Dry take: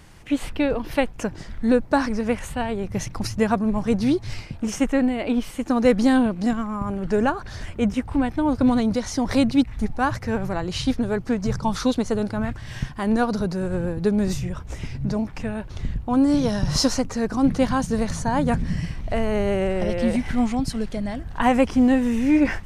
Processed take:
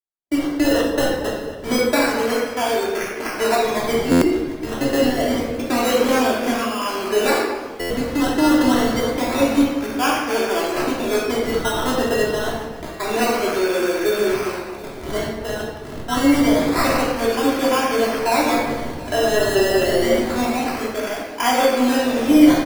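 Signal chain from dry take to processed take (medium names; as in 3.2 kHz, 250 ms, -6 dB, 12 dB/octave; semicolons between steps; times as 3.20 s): rattle on loud lows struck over -28 dBFS, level -23 dBFS; gate -28 dBFS, range -60 dB; elliptic band-pass 330–6600 Hz; in parallel at +1.5 dB: peak limiter -17.5 dBFS, peak gain reduction 9 dB; on the sum: decimation with a swept rate 15×, swing 60% 0.27 Hz; doubling 13 ms -11.5 dB; on a send: thinning echo 731 ms, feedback 52%, level -19 dB; on the sum: simulated room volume 890 m³, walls mixed, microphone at 3 m; buffer glitch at 4.11/7.80 s, samples 512, times 8; trim -5.5 dB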